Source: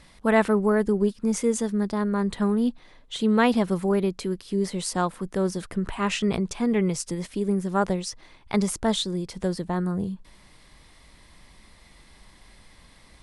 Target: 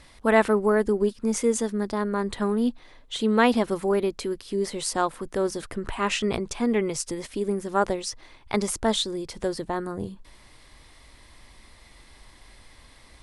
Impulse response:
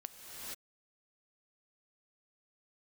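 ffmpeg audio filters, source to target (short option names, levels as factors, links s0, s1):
-af "equalizer=f=180:t=o:w=0.29:g=-13.5,volume=1.19"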